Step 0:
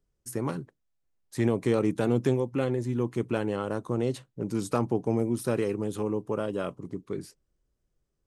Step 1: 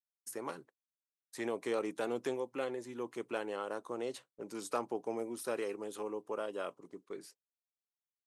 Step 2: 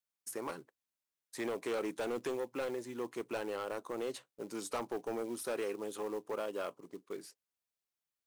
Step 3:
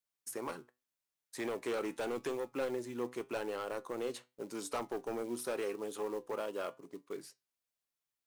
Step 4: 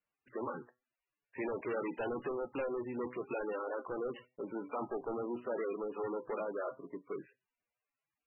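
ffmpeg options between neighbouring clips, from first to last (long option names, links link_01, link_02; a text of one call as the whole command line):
ffmpeg -i in.wav -af "highpass=470,agate=range=-33dB:threshold=-48dB:ratio=3:detection=peak,volume=-5dB" out.wav
ffmpeg -i in.wav -af "acrusher=bits=5:mode=log:mix=0:aa=0.000001,volume=33dB,asoftclip=hard,volume=-33dB,volume=1.5dB" out.wav
ffmpeg -i in.wav -af "flanger=delay=6.9:depth=1.4:regen=82:speed=0.85:shape=sinusoidal,volume=4.5dB" out.wav
ffmpeg -i in.wav -af "asoftclip=type=tanh:threshold=-37.5dB,volume=5dB" -ar 24000 -c:a libmp3lame -b:a 8k out.mp3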